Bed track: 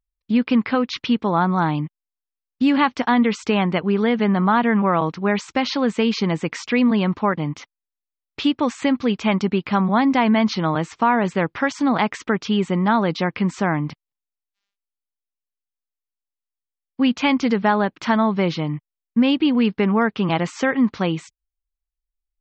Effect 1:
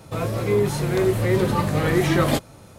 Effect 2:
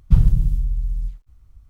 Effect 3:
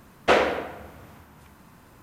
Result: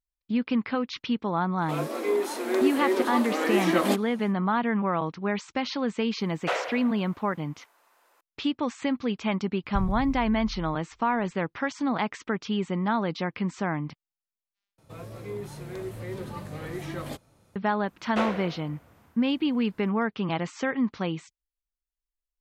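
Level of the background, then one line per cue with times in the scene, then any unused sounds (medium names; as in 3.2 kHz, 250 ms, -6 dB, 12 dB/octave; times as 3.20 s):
bed track -8 dB
1.57 s: add 1 -2 dB, fades 0.10 s + rippled Chebyshev high-pass 230 Hz, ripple 3 dB
6.19 s: add 3 -8 dB + high-pass 490 Hz 24 dB/octave
9.63 s: add 2 -16.5 dB
14.78 s: replace with 1 -16 dB
17.88 s: add 3 -10.5 dB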